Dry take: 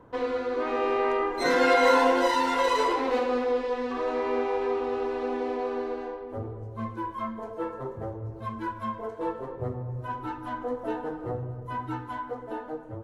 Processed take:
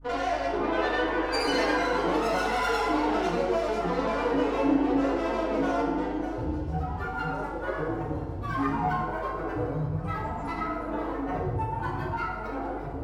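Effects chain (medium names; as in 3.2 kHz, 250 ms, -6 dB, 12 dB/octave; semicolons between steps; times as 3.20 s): bass shelf 330 Hz -12 dB; compression 6:1, threshold -30 dBFS, peak gain reduction 11.5 dB; feedback echo behind a high-pass 960 ms, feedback 60%, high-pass 4 kHz, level -10.5 dB; granulator, pitch spread up and down by 7 st; hum 50 Hz, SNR 25 dB; bass shelf 160 Hz +12 dB; FDN reverb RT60 1.1 s, low-frequency decay 1×, high-frequency decay 0.7×, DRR -5.5 dB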